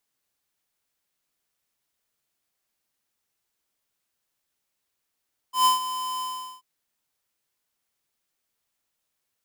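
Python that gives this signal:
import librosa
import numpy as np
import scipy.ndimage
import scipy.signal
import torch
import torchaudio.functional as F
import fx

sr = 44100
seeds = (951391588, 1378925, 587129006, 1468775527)

y = fx.adsr_tone(sr, wave='square', hz=1020.0, attack_ms=124.0, decay_ms=135.0, sustain_db=-13.0, held_s=0.68, release_ms=406.0, level_db=-17.0)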